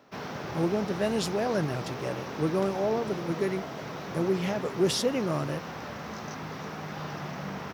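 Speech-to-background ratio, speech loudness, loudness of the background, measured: 7.5 dB, -30.0 LUFS, -37.5 LUFS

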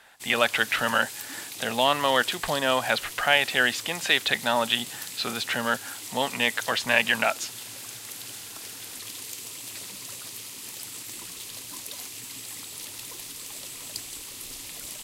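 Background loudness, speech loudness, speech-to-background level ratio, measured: -36.5 LUFS, -24.5 LUFS, 12.0 dB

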